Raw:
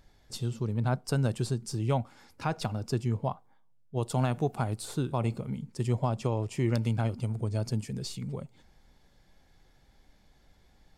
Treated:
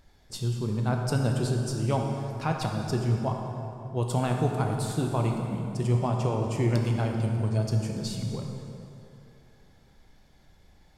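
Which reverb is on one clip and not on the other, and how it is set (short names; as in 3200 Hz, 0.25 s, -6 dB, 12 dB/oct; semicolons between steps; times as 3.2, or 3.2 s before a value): plate-style reverb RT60 2.9 s, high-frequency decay 0.65×, DRR 1.5 dB; gain +1 dB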